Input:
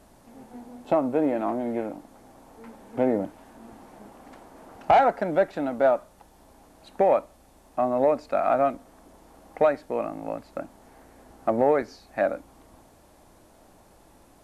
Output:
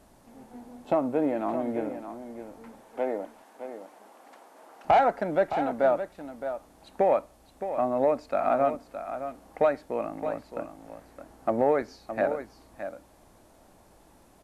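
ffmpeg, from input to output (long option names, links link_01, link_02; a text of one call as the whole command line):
ffmpeg -i in.wav -filter_complex "[0:a]asettb=1/sr,asplit=3[link_01][link_02][link_03];[link_01]atrim=end=2.814[link_04];[link_02]atrim=start=2.81:end=4.85,asetpts=PTS-STARTPTS,afade=type=in:duration=0.004:curve=qsin,afade=type=out:start_time=2.036:duration=0.004:curve=qsin,highpass=460[link_05];[link_03]atrim=start=4.846[link_06];[link_04][link_05]acrossfade=duration=0.004:curve1=hsin:curve2=qsin[link_07];[link_07][link_06]acrossfade=duration=0.004:curve1=qsin:curve2=hsin,aecho=1:1:616:0.316,volume=-2.5dB" out.wav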